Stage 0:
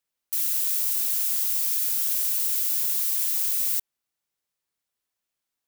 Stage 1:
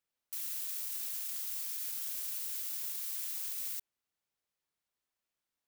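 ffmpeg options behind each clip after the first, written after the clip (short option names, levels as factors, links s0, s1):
-af "alimiter=limit=0.0841:level=0:latency=1:release=12,highshelf=f=4800:g=-5.5,volume=0.75"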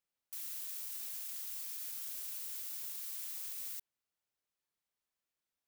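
-af "asoftclip=type=tanh:threshold=0.0266,volume=0.708"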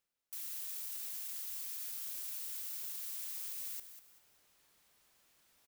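-filter_complex "[0:a]areverse,acompressor=mode=upward:threshold=0.00224:ratio=2.5,areverse,asplit=4[s0][s1][s2][s3];[s1]adelay=193,afreqshift=-35,volume=0.282[s4];[s2]adelay=386,afreqshift=-70,volume=0.0871[s5];[s3]adelay=579,afreqshift=-105,volume=0.0272[s6];[s0][s4][s5][s6]amix=inputs=4:normalize=0"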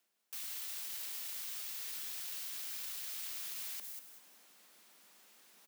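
-filter_complex "[0:a]acrossover=split=870|5000[s0][s1][s2];[s2]alimiter=level_in=8.91:limit=0.0631:level=0:latency=1,volume=0.112[s3];[s0][s1][s3]amix=inputs=3:normalize=0,afreqshift=170,volume=2.37"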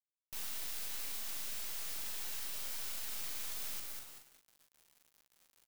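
-filter_complex "[0:a]acrusher=bits=6:dc=4:mix=0:aa=0.000001,asplit=2[s0][s1];[s1]aecho=0:1:15|41:0.299|0.562[s2];[s0][s2]amix=inputs=2:normalize=0,volume=1.41"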